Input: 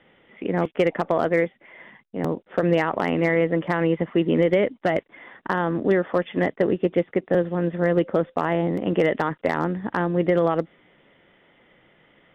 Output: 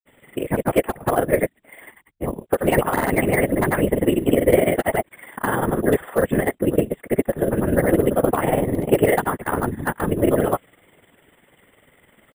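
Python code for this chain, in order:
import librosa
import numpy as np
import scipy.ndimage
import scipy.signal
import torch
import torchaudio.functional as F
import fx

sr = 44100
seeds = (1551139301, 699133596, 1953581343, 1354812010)

y = fx.granulator(x, sr, seeds[0], grain_ms=76.0, per_s=20.0, spray_ms=100.0, spread_st=0)
y = fx.whisperise(y, sr, seeds[1])
y = np.repeat(scipy.signal.resample_poly(y, 1, 4), 4)[:len(y)]
y = F.gain(torch.from_numpy(y), 4.5).numpy()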